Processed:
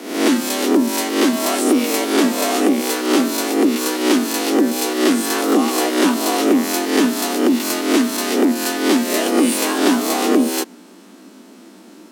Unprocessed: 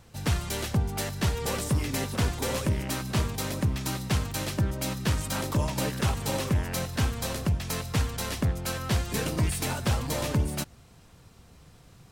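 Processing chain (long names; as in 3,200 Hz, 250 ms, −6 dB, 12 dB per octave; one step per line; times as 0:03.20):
peak hold with a rise ahead of every peak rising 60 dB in 0.70 s
frequency shifter +180 Hz
level +8.5 dB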